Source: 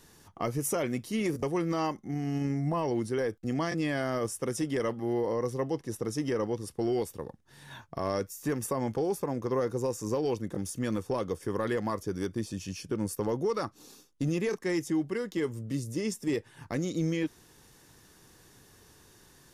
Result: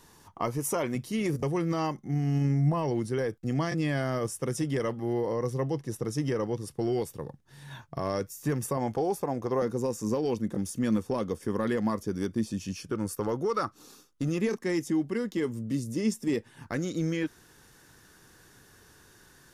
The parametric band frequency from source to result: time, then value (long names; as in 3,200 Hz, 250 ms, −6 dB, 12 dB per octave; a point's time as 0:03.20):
parametric band +8 dB 0.43 octaves
980 Hz
from 0:00.95 140 Hz
from 0:08.77 730 Hz
from 0:09.62 220 Hz
from 0:12.78 1,300 Hz
from 0:14.41 230 Hz
from 0:16.67 1,500 Hz